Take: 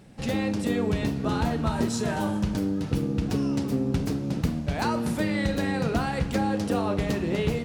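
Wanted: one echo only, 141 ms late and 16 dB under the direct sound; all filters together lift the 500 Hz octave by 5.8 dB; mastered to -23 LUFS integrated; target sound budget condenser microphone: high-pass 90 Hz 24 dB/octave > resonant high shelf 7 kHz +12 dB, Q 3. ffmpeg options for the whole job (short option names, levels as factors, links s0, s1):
-af "highpass=f=90:w=0.5412,highpass=f=90:w=1.3066,equalizer=f=500:t=o:g=7,highshelf=f=7000:t=q:w=3:g=12,aecho=1:1:141:0.158,volume=1.19"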